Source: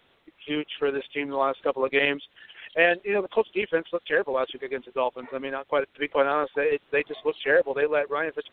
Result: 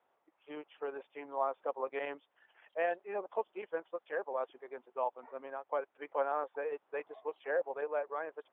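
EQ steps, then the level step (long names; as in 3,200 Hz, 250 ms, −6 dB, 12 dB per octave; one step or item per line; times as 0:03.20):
resonant band-pass 820 Hz, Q 1.9
high-frequency loss of the air 220 metres
−5.0 dB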